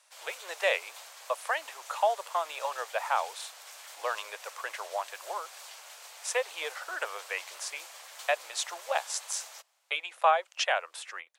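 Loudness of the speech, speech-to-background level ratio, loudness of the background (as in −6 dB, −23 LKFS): −32.5 LKFS, 13.5 dB, −46.0 LKFS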